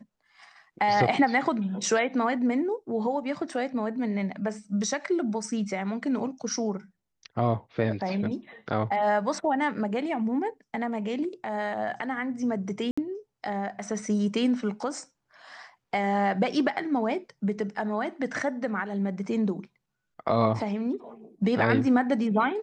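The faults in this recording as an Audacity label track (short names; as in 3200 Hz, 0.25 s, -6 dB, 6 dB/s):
12.910000	12.970000	gap 65 ms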